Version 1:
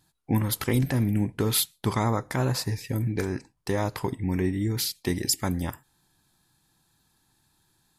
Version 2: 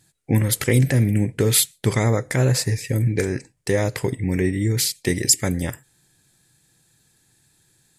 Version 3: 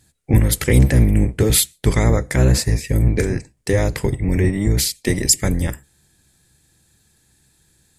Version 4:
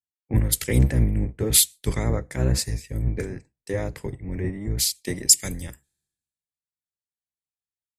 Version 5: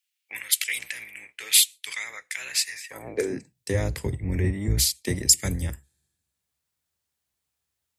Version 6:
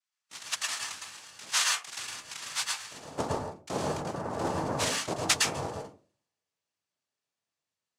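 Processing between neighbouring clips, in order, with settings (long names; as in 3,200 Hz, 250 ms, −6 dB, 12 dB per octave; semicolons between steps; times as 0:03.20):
octave-band graphic EQ 125/500/1,000/2,000/8,000 Hz +8/+10/−8/+10/+12 dB
sub-octave generator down 1 octave, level +1 dB; level +1.5 dB
multiband upward and downward expander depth 100%; level −9 dB
high-pass filter sweep 2,500 Hz → 68 Hz, 0:02.66–0:03.77; multiband upward and downward compressor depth 40%; level +1.5 dB
cochlear-implant simulation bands 2; convolution reverb RT60 0.35 s, pre-delay 108 ms, DRR −0.5 dB; level −7 dB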